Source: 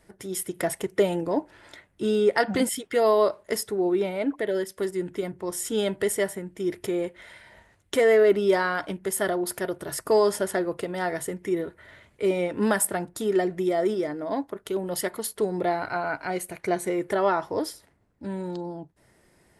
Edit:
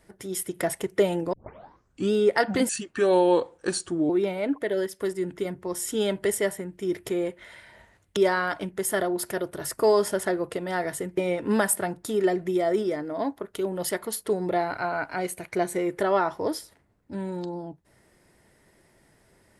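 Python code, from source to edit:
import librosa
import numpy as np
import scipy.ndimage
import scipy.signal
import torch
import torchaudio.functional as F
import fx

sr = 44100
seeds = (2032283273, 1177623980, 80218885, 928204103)

y = fx.edit(x, sr, fx.tape_start(start_s=1.33, length_s=0.79),
    fx.speed_span(start_s=2.69, length_s=1.18, speed=0.84),
    fx.cut(start_s=7.94, length_s=0.5),
    fx.cut(start_s=11.45, length_s=0.84), tone=tone)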